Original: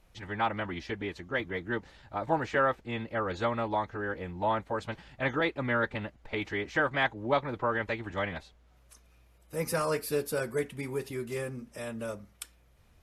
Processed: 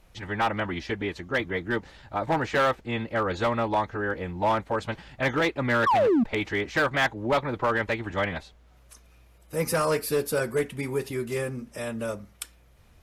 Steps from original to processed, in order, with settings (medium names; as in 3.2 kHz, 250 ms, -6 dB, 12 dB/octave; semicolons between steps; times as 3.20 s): painted sound fall, 5.86–6.24 s, 210–1200 Hz -25 dBFS; hard clipper -23.5 dBFS, distortion -15 dB; trim +5.5 dB